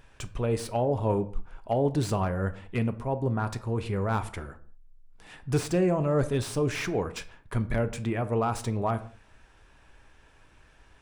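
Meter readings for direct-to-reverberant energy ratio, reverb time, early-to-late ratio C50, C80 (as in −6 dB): 10.0 dB, non-exponential decay, 16.0 dB, 19.5 dB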